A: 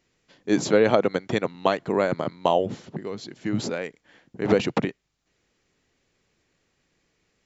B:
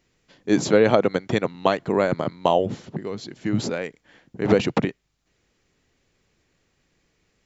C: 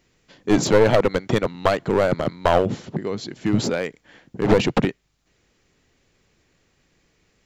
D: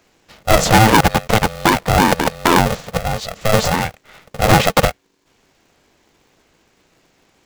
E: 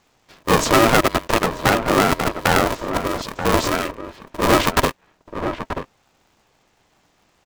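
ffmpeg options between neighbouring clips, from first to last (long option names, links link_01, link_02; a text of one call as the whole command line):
ffmpeg -i in.wav -af "lowshelf=frequency=120:gain=5.5,volume=1.5dB" out.wav
ffmpeg -i in.wav -af "aeval=exprs='clip(val(0),-1,0.1)':channel_layout=same,volume=4dB" out.wav
ffmpeg -i in.wav -af "apsyclip=7.5dB,aeval=exprs='val(0)*sgn(sin(2*PI*330*n/s))':channel_layout=same,volume=-1.5dB" out.wav
ffmpeg -i in.wav -filter_complex "[0:a]aeval=exprs='val(0)*sin(2*PI*460*n/s)':channel_layout=same,asplit=2[link_01][link_02];[link_02]adelay=932.9,volume=-8dB,highshelf=frequency=4000:gain=-21[link_03];[link_01][link_03]amix=inputs=2:normalize=0,volume=-1dB" out.wav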